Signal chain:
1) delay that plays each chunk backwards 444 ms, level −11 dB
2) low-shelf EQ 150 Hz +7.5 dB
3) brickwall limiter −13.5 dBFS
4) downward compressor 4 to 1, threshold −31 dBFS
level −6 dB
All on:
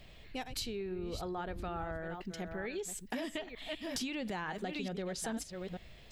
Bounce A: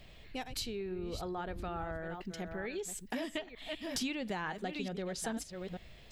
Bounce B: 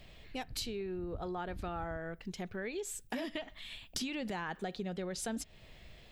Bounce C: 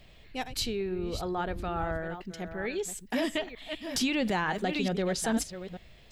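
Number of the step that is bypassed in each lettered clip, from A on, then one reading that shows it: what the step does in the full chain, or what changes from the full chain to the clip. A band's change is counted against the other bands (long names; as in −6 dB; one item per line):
3, change in momentary loudness spread +2 LU
1, change in crest factor +2.5 dB
4, average gain reduction 5.5 dB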